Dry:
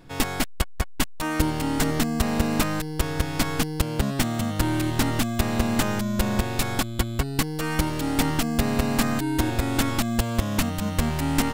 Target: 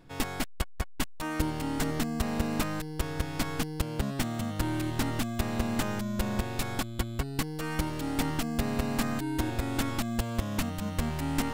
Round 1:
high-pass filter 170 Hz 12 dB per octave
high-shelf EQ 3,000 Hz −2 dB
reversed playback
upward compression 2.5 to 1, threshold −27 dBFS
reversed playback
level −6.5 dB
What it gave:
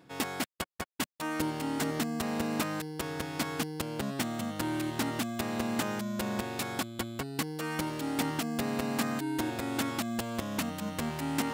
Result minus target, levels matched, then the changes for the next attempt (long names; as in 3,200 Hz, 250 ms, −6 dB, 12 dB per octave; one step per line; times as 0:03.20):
125 Hz band −5.0 dB
remove: high-pass filter 170 Hz 12 dB per octave